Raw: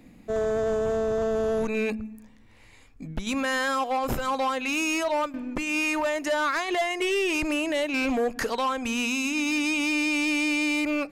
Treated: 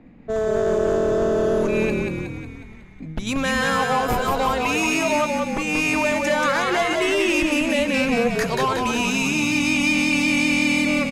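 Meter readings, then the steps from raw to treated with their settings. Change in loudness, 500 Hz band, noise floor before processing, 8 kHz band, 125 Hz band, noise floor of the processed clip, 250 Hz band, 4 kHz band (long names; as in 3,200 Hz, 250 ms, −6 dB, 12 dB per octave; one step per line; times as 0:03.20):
+5.5 dB, +5.5 dB, −53 dBFS, +5.5 dB, +11.5 dB, −40 dBFS, +6.0 dB, +5.5 dB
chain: low-pass that shuts in the quiet parts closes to 1,700 Hz, open at −27.5 dBFS
echo with shifted repeats 182 ms, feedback 58%, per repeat −41 Hz, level −3.5 dB
level +3.5 dB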